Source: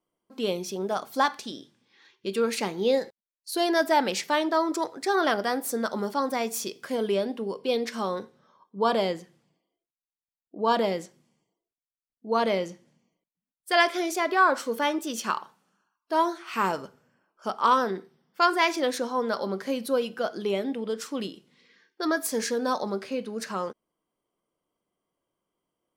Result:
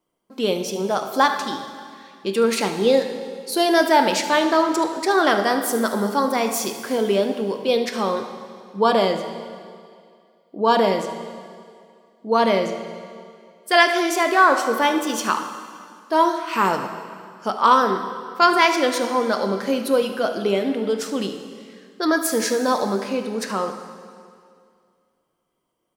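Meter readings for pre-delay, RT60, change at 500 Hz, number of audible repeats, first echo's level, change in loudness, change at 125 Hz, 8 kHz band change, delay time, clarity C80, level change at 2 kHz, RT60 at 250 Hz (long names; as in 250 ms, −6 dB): 4 ms, 2.2 s, +7.0 dB, 1, −14.0 dB, +6.5 dB, +7.0 dB, +7.0 dB, 74 ms, 9.0 dB, +7.0 dB, 2.2 s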